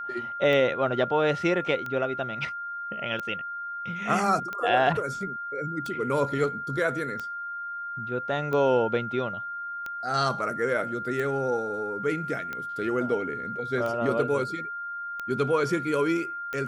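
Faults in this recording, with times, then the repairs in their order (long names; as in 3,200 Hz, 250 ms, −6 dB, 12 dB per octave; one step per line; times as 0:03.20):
scratch tick 45 rpm −20 dBFS
whistle 1,400 Hz −32 dBFS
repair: click removal
notch filter 1,400 Hz, Q 30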